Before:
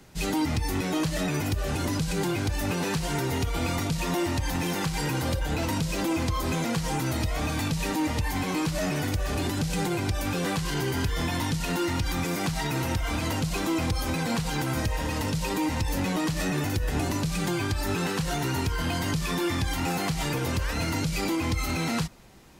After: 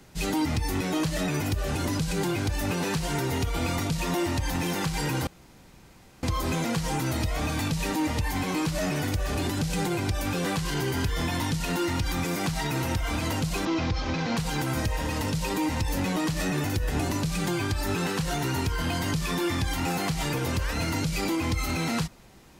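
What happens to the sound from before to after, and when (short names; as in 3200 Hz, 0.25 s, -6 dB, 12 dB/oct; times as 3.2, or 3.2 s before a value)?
5.27–6.23 room tone
13.65–14.37 CVSD 32 kbps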